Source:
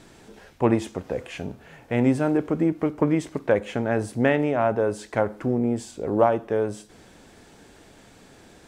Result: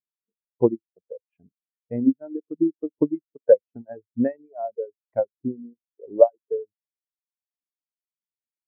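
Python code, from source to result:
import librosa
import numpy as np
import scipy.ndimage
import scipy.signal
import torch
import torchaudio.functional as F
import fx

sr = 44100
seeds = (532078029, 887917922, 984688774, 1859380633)

y = fx.dereverb_blind(x, sr, rt60_s=1.6)
y = fx.transient(y, sr, attack_db=8, sustain_db=-7)
y = fx.spectral_expand(y, sr, expansion=2.5)
y = y * librosa.db_to_amplitude(-2.0)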